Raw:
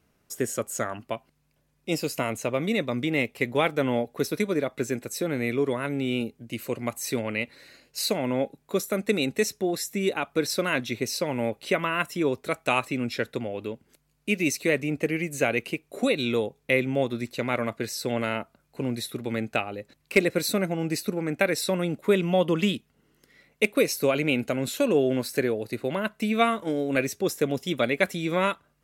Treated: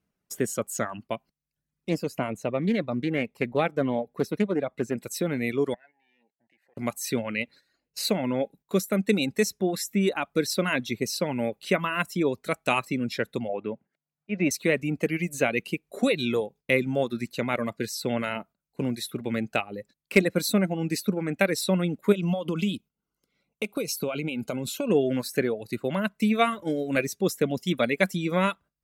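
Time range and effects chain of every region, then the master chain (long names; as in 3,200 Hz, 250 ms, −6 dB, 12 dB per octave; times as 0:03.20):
0:01.89–0:04.98: high-shelf EQ 2,600 Hz −10.5 dB + highs frequency-modulated by the lows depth 0.16 ms
0:05.74–0:06.77: leveller curve on the samples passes 2 + pair of resonant band-passes 1,200 Hz, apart 1.2 octaves + downward compressor 2.5 to 1, threshold −54 dBFS
0:07.42–0:08.05: high-shelf EQ 5,000 Hz −4 dB + one half of a high-frequency compander decoder only
0:13.49–0:14.51: Chebyshev band-pass filter 120–2,100 Hz + parametric band 700 Hz +9 dB 0.87 octaves + volume swells 129 ms
0:22.12–0:24.90: downward compressor 10 to 1, threshold −24 dBFS + Butterworth band-reject 1,800 Hz, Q 3.2
whole clip: reverb reduction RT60 0.72 s; noise gate −48 dBFS, range −13 dB; parametric band 190 Hz +7 dB 0.46 octaves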